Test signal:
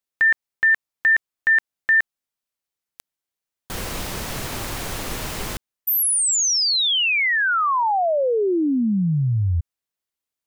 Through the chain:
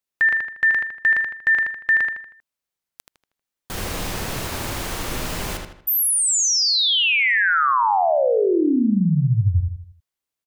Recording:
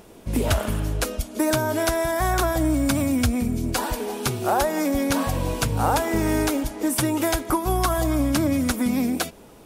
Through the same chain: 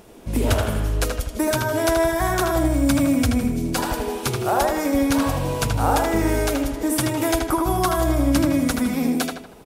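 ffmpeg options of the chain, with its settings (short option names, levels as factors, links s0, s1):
-filter_complex "[0:a]asplit=2[s0][s1];[s1]adelay=79,lowpass=f=4400:p=1,volume=0.668,asplit=2[s2][s3];[s3]adelay=79,lowpass=f=4400:p=1,volume=0.43,asplit=2[s4][s5];[s5]adelay=79,lowpass=f=4400:p=1,volume=0.43,asplit=2[s6][s7];[s7]adelay=79,lowpass=f=4400:p=1,volume=0.43,asplit=2[s8][s9];[s9]adelay=79,lowpass=f=4400:p=1,volume=0.43[s10];[s0][s2][s4][s6][s8][s10]amix=inputs=6:normalize=0"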